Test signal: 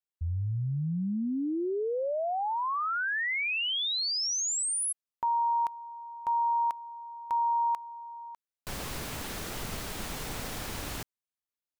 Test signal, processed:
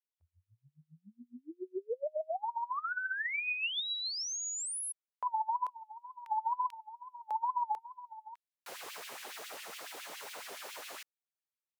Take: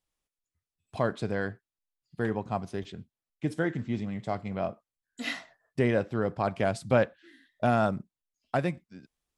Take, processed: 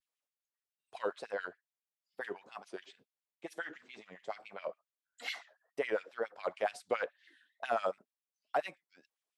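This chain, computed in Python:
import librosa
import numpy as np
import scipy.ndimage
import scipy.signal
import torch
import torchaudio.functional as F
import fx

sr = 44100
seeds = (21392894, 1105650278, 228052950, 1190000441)

y = fx.filter_lfo_highpass(x, sr, shape='sine', hz=7.2, low_hz=440.0, high_hz=2800.0, q=2.2)
y = fx.wow_flutter(y, sr, seeds[0], rate_hz=2.1, depth_cents=130.0)
y = F.gain(torch.from_numpy(y), -8.0).numpy()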